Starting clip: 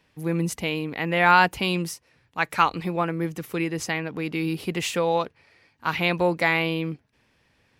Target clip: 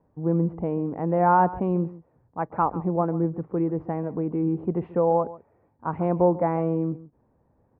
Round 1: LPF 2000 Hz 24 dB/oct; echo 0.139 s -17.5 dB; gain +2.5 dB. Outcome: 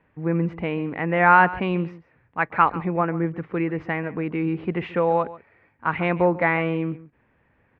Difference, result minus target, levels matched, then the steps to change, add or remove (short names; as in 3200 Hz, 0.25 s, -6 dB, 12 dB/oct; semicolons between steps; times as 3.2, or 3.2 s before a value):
2000 Hz band +15.0 dB
change: LPF 940 Hz 24 dB/oct